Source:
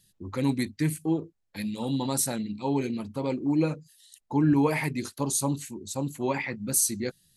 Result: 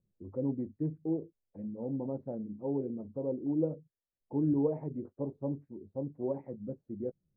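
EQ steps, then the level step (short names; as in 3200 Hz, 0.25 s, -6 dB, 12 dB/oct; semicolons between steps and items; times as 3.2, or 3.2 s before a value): ladder low-pass 640 Hz, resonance 45%; 0.0 dB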